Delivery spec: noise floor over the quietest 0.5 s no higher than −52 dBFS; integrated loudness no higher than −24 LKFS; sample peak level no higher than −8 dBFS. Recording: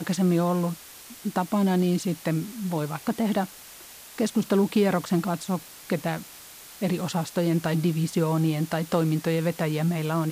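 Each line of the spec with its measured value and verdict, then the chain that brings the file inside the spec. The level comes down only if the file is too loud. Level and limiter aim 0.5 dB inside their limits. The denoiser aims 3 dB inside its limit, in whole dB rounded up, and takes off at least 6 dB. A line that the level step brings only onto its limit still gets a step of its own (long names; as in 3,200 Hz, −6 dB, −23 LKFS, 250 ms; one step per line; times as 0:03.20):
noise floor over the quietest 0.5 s −46 dBFS: out of spec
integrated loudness −26.0 LKFS: in spec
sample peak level −10.0 dBFS: in spec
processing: broadband denoise 9 dB, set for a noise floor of −46 dBFS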